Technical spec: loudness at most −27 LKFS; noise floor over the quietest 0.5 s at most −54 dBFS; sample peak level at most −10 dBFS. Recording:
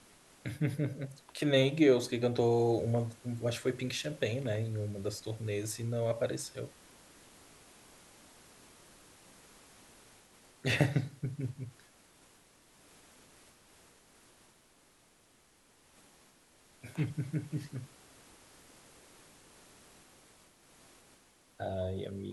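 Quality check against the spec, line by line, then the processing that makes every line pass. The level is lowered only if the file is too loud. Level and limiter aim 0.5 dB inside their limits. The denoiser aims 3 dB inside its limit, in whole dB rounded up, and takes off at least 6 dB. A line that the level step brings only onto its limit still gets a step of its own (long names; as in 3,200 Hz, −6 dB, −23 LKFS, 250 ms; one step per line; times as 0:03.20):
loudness −33.5 LKFS: in spec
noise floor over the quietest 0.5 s −66 dBFS: in spec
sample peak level −13.0 dBFS: in spec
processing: no processing needed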